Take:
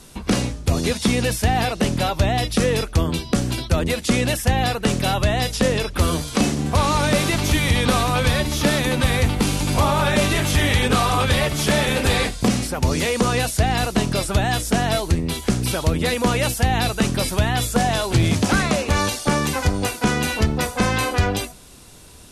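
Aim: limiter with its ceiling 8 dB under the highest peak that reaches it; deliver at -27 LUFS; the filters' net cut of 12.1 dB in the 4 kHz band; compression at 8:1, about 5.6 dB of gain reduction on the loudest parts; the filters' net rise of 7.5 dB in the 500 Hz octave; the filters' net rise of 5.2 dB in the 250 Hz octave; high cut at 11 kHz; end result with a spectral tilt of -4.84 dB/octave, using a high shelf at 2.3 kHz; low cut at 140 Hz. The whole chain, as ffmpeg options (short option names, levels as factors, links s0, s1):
-af "highpass=140,lowpass=11000,equalizer=f=250:t=o:g=5.5,equalizer=f=500:t=o:g=8,highshelf=f=2300:g=-8,equalizer=f=4000:t=o:g=-8.5,acompressor=threshold=0.158:ratio=8,volume=0.631,alimiter=limit=0.15:level=0:latency=1"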